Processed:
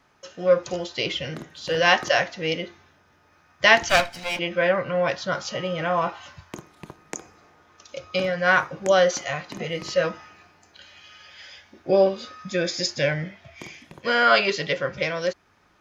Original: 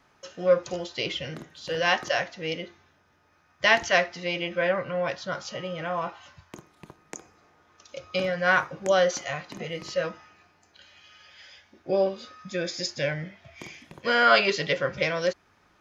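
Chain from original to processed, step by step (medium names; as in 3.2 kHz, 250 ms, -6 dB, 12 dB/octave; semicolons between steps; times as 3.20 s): 3.89–4.39 s: comb filter that takes the minimum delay 1.3 ms; gain riding 2 s; trim +1.5 dB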